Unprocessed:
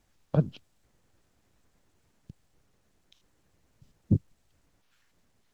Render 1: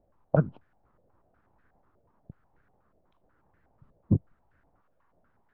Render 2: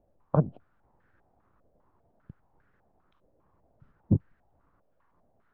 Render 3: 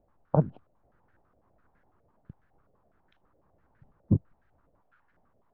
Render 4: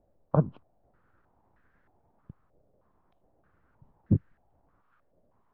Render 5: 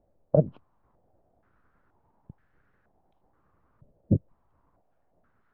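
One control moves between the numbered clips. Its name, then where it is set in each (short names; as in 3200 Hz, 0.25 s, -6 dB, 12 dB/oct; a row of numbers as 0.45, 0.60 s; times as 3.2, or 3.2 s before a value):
stepped low-pass, rate: 8.2, 5, 12, 3.2, 2.1 Hz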